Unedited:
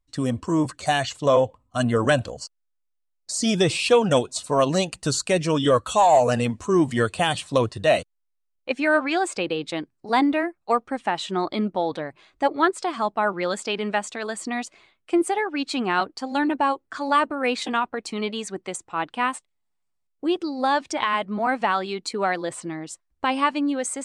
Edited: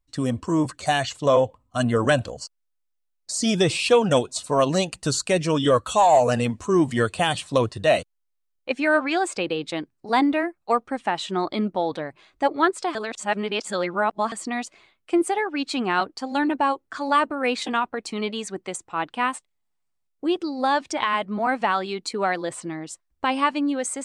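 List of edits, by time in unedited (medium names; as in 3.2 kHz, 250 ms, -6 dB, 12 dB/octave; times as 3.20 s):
12.95–14.32 s: reverse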